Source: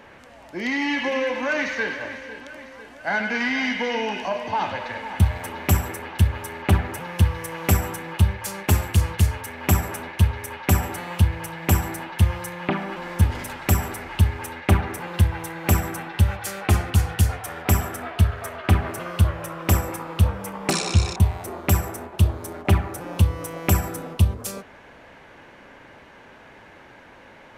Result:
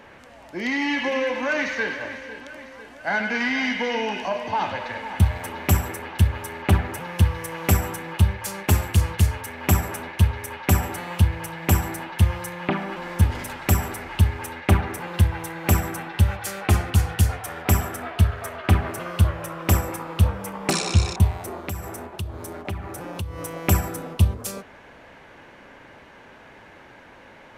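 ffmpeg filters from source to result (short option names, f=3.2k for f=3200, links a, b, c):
-filter_complex "[0:a]asettb=1/sr,asplit=3[a][b][c];[a]atrim=end=21.674[d];[b]atrim=start=21.67:end=23.38,asetpts=PTS-STARTPTS,afade=t=in:d=0.004:c=qsin,afade=t=out:st=1.706:d=0.004:c=qsin,acompressor=threshold=-30dB:ratio=3:attack=3.2:release=140:knee=1:detection=peak[e];[c]atrim=start=23.376[f];[d][e]acrossfade=d=0.004:c1=hsin:c2=qsin[g];[g][f]acrossfade=d=0.004:c1=qsin:c2=hsin"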